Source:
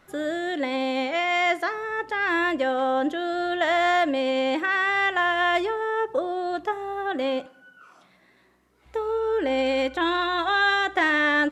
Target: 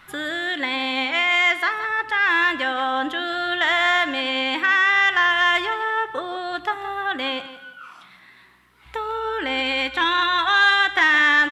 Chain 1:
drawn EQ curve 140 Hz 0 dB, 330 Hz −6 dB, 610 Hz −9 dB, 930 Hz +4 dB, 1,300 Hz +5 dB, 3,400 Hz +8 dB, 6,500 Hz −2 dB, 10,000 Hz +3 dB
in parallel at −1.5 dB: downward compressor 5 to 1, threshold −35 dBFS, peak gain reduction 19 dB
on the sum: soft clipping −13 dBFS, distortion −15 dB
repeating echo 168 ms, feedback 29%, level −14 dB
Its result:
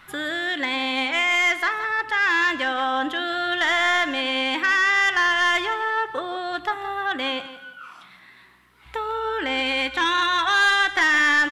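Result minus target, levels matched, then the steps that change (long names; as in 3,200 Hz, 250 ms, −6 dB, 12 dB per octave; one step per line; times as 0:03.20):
soft clipping: distortion +10 dB
change: soft clipping −6 dBFS, distortion −26 dB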